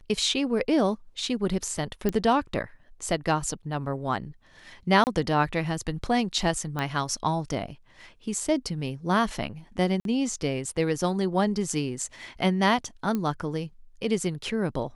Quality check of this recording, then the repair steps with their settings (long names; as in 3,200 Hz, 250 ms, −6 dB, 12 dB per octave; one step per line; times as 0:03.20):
0:02.09: click −13 dBFS
0:05.04–0:05.07: drop-out 29 ms
0:06.79: click −16 dBFS
0:10.00–0:10.05: drop-out 52 ms
0:13.15: click −16 dBFS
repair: click removal
repair the gap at 0:05.04, 29 ms
repair the gap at 0:10.00, 52 ms